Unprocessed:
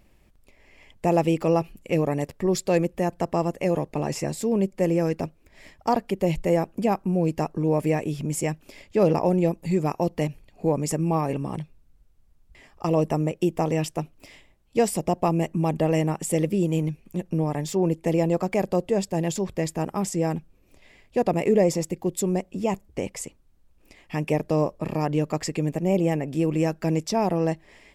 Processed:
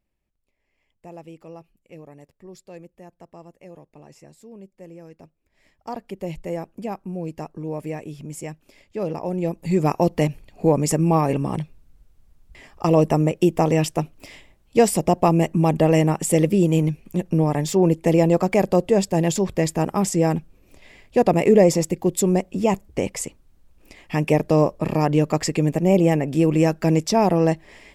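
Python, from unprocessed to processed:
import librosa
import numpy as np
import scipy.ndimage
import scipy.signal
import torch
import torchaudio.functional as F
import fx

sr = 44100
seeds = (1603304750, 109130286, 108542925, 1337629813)

y = fx.gain(x, sr, db=fx.line((5.09, -19.5), (6.14, -7.0), (9.19, -7.0), (9.87, 5.5)))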